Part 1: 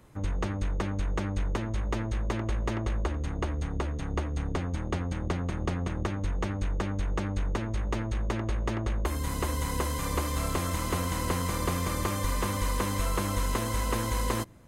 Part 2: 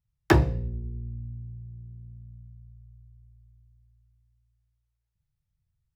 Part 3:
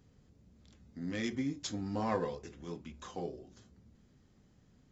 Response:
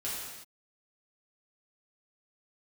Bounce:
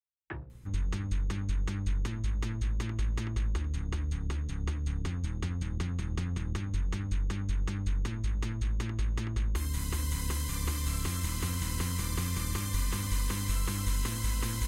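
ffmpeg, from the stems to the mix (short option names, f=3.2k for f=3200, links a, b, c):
-filter_complex "[0:a]equalizer=f=610:w=2.9:g=-8,adelay=500,volume=0.5dB[a];[1:a]afwtdn=0.0158,lowpass=2.1k,lowshelf=f=430:g=-11.5,volume=-9dB[b];[a][b]amix=inputs=2:normalize=0,equalizer=f=660:w=0.49:g=-12.5"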